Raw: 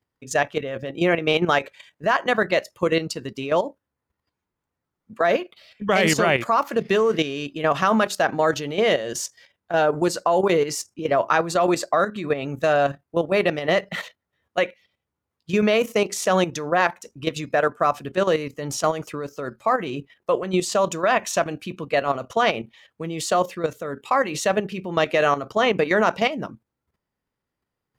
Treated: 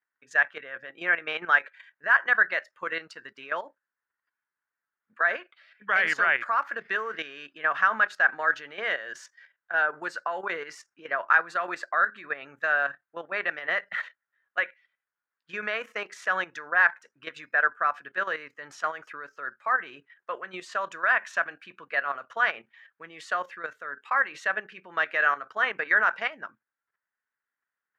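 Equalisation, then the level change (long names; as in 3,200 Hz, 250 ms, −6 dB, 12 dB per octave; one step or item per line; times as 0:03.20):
resonant band-pass 1,600 Hz, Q 5.1
+6.5 dB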